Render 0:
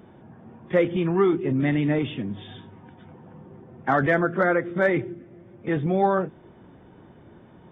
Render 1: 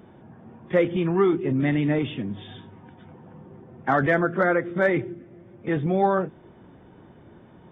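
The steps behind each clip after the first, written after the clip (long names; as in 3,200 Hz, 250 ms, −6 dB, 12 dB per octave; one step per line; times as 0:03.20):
no processing that can be heard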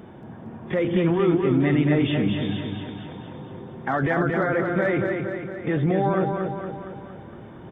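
brickwall limiter −21 dBFS, peak gain reduction 11.5 dB
repeating echo 231 ms, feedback 56%, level −4.5 dB
level +6 dB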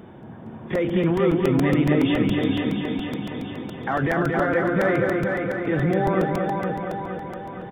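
repeating echo 466 ms, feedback 56%, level −4.5 dB
regular buffer underruns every 0.14 s, samples 128, repeat, from 0:00.75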